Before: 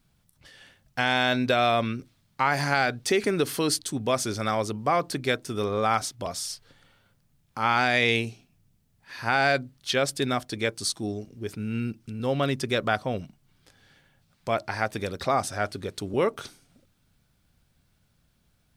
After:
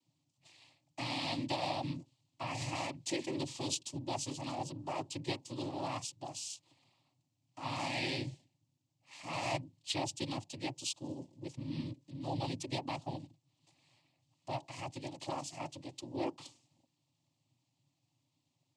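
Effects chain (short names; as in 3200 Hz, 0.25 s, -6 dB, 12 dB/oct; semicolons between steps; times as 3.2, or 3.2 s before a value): dynamic EQ 830 Hz, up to -7 dB, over -38 dBFS, Q 1.4; noise vocoder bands 8; fixed phaser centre 300 Hz, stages 8; gain -7.5 dB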